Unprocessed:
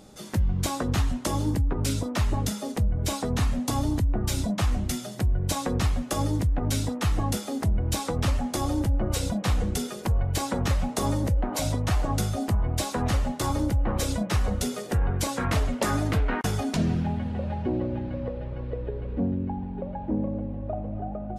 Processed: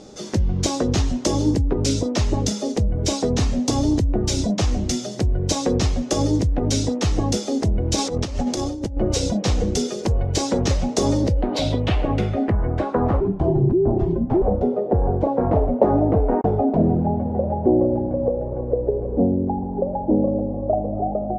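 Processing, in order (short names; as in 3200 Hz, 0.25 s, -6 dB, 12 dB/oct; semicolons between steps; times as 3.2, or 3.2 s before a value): bell 410 Hz +9 dB 1.4 oct; 13.2–14.42 frequency shift -440 Hz; dynamic EQ 1300 Hz, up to -6 dB, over -43 dBFS, Q 1.1; 7.98–8.97 negative-ratio compressor -26 dBFS, ratio -0.5; low-pass sweep 6000 Hz -> 780 Hz, 11.1–13.55; gain +3 dB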